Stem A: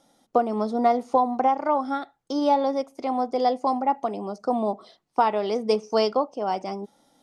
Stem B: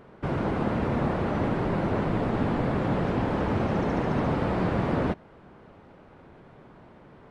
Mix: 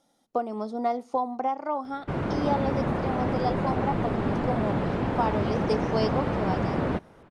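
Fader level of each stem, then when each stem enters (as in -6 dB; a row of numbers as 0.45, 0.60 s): -6.5, -1.0 dB; 0.00, 1.85 s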